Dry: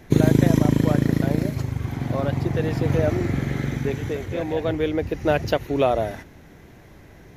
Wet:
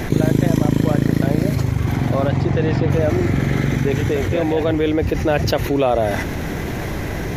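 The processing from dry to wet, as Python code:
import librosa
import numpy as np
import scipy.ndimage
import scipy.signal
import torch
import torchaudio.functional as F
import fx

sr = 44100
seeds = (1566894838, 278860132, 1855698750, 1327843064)

y = fx.lowpass(x, sr, hz=fx.line((2.28, 8700.0), (2.89, 4200.0)), slope=12, at=(2.28, 2.89), fade=0.02)
y = fx.env_flatten(y, sr, amount_pct=70)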